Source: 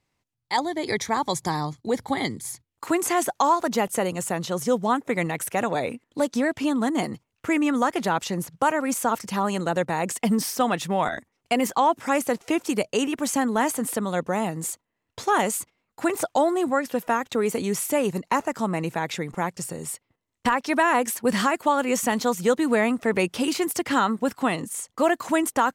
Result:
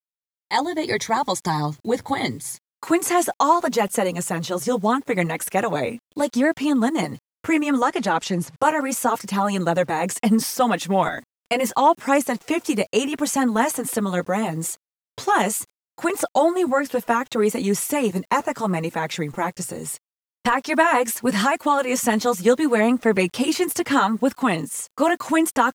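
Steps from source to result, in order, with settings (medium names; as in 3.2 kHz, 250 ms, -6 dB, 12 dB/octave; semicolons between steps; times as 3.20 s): flange 0.74 Hz, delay 3.3 ms, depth 7.6 ms, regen -10%; bit crusher 10-bit; 7.81–8.57 s: low-pass 10 kHz 12 dB/octave; trim +6 dB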